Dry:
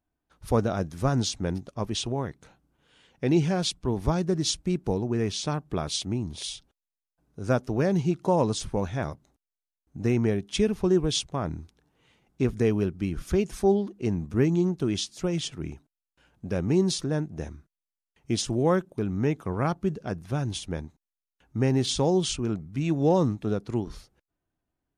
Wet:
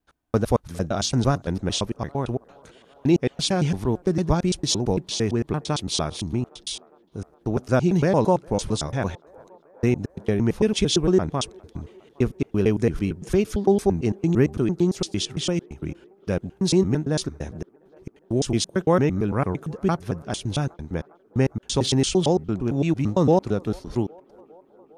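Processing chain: slices in reverse order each 0.113 s, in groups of 3; on a send: band-limited delay 0.406 s, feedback 73%, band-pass 730 Hz, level -24 dB; on the sum: gain +4 dB

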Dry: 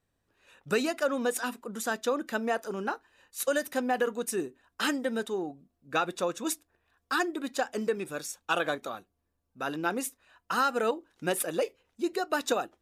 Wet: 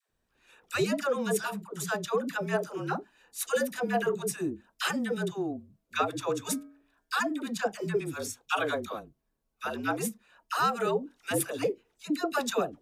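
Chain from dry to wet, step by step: 6.07–7.14 de-hum 164.1 Hz, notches 14; dispersion lows, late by 98 ms, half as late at 590 Hz; frequency shift -46 Hz

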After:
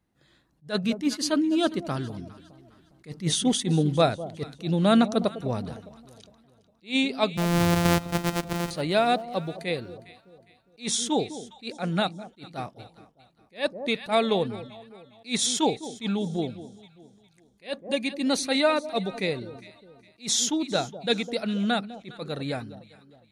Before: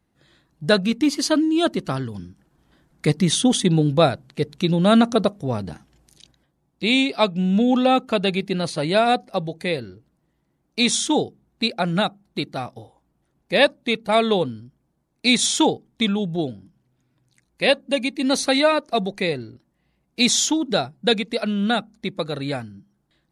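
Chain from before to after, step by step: 7.37–8.71 sample sorter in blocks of 256 samples; echo with dull and thin repeats by turns 0.204 s, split 860 Hz, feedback 58%, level -14 dB; attack slew limiter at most 280 dB/s; gain -4.5 dB

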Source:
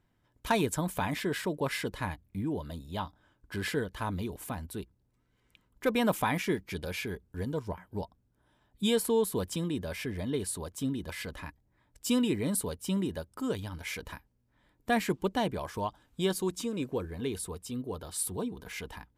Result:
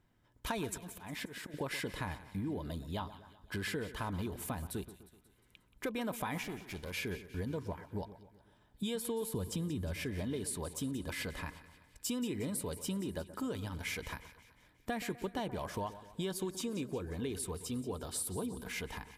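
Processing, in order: 9.34–9.96 bell 81 Hz +10.5 dB 2.7 oct; in parallel at +1 dB: limiter -25 dBFS, peak gain reduction 8.5 dB; 0.66–1.54 on the sum: auto swell 0.398 s; compressor 4:1, threshold -29 dBFS, peak gain reduction 9.5 dB; 6.43–6.93 tube stage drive 31 dB, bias 0.75; on a send: split-band echo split 1700 Hz, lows 0.126 s, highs 0.179 s, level -14 dB; on the sum: gain -6 dB

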